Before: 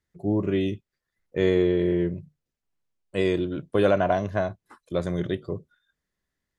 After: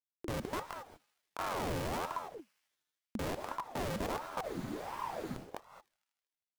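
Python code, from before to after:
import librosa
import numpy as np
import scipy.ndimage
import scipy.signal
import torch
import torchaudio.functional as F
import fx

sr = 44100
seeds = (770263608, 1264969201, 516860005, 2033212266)

p1 = np.r_[np.sort(x[:len(x) // 128 * 128].reshape(-1, 128), axis=1).ravel(), x[len(x) // 128 * 128:]]
p2 = scipy.signal.sosfilt(scipy.signal.butter(4, 130.0, 'highpass', fs=sr, output='sos'), p1)
p3 = fx.high_shelf(p2, sr, hz=3200.0, db=-12.0)
p4 = fx.level_steps(p3, sr, step_db=12)
p5 = fx.dmg_crackle(p4, sr, seeds[0], per_s=490.0, level_db=-43.0)
p6 = fx.schmitt(p5, sr, flips_db=-31.0)
p7 = p6 + fx.echo_thinned(p6, sr, ms=78, feedback_pct=77, hz=710.0, wet_db=-22.0, dry=0)
p8 = fx.rev_gated(p7, sr, seeds[1], gate_ms=250, shape='rising', drr_db=8.0)
p9 = fx.spec_freeze(p8, sr, seeds[2], at_s=4.46, hold_s=0.89)
p10 = fx.ring_lfo(p9, sr, carrier_hz=600.0, swing_pct=70, hz=1.4)
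y = F.gain(torch.from_numpy(p10), -2.5).numpy()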